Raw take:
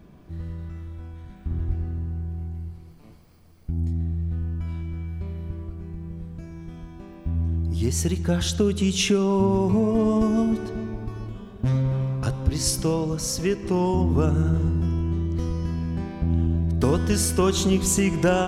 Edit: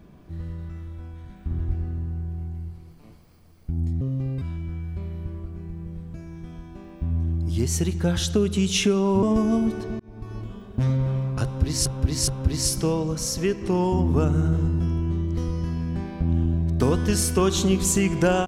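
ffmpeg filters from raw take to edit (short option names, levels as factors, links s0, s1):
-filter_complex "[0:a]asplit=7[s0][s1][s2][s3][s4][s5][s6];[s0]atrim=end=4.014[s7];[s1]atrim=start=4.01:end=4.66,asetpts=PTS-STARTPTS,asetrate=70560,aresample=44100[s8];[s2]atrim=start=4.656:end=9.472[s9];[s3]atrim=start=10.078:end=10.85,asetpts=PTS-STARTPTS,afade=t=out:st=0.768:d=0.004:c=hsin[s10];[s4]atrim=start=10.85:end=12.712,asetpts=PTS-STARTPTS,afade=t=in:d=0.38[s11];[s5]atrim=start=12.288:end=12.712[s12];[s6]atrim=start=12.288[s13];[s7][s8]acrossfade=d=0.004:c1=hsin:c2=hsin[s14];[s14][s9]acrossfade=d=0.004:c1=hsin:c2=hsin[s15];[s10][s11]concat=n=2:v=0:a=1[s16];[s15][s16]acrossfade=d=0.004:c1=hsin:c2=hsin[s17];[s17][s12]acrossfade=d=0.004:c1=hsin:c2=hsin[s18];[s18][s13]acrossfade=d=0.004:c1=hsin:c2=hsin"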